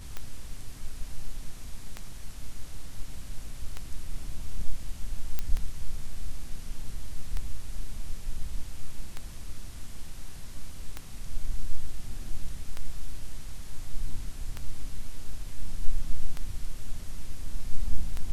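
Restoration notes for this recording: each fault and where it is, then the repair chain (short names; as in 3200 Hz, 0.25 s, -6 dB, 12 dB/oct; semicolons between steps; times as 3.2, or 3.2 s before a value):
tick 33 1/3 rpm -19 dBFS
5.39 pop -14 dBFS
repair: de-click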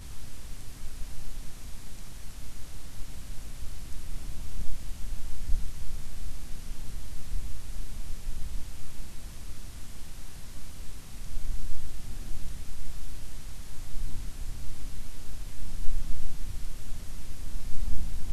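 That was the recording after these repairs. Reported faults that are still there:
none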